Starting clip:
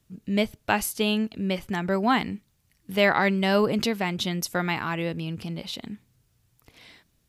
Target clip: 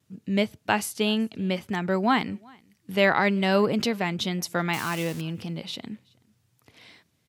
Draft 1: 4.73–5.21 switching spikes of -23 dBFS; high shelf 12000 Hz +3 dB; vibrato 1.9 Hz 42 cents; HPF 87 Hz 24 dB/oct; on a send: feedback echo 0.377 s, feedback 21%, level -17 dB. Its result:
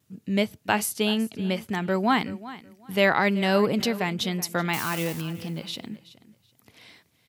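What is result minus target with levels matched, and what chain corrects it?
echo-to-direct +11 dB; 8000 Hz band +3.0 dB
4.73–5.21 switching spikes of -23 dBFS; high shelf 12000 Hz -8.5 dB; vibrato 1.9 Hz 42 cents; HPF 87 Hz 24 dB/oct; on a send: feedback echo 0.377 s, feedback 21%, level -28 dB

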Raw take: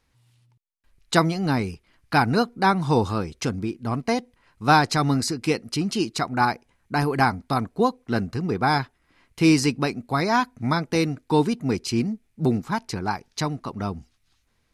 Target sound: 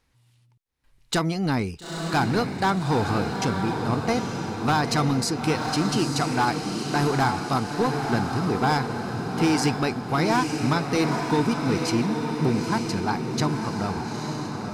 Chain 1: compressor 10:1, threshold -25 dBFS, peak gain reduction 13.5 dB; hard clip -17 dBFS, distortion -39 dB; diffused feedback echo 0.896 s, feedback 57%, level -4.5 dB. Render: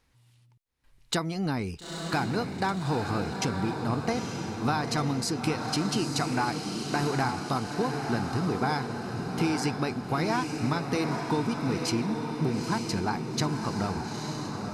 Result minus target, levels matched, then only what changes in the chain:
compressor: peak gain reduction +7.5 dB
change: compressor 10:1, threshold -16.5 dBFS, peak gain reduction 6 dB

